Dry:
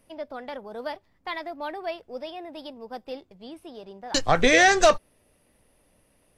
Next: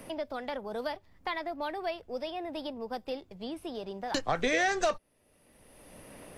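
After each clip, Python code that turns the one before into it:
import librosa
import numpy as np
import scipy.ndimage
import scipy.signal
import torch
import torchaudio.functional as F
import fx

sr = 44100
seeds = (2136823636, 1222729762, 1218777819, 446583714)

y = fx.band_squash(x, sr, depth_pct=70)
y = y * 10.0 ** (-3.0 / 20.0)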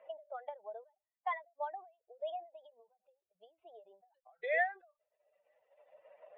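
y = fx.spec_expand(x, sr, power=2.2)
y = scipy.signal.sosfilt(scipy.signal.ellip(3, 1.0, 40, [620.0, 3400.0], 'bandpass', fs=sr, output='sos'), y)
y = fx.end_taper(y, sr, db_per_s=200.0)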